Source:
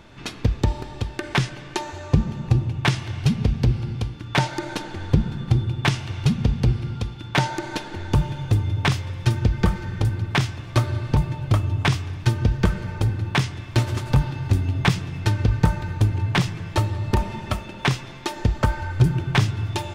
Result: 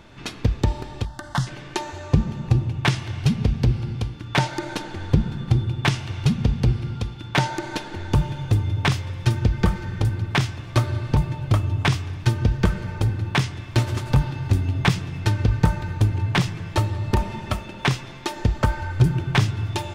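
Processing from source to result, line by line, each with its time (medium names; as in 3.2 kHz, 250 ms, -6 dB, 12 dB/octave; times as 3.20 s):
1.05–1.47 s: static phaser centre 1 kHz, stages 4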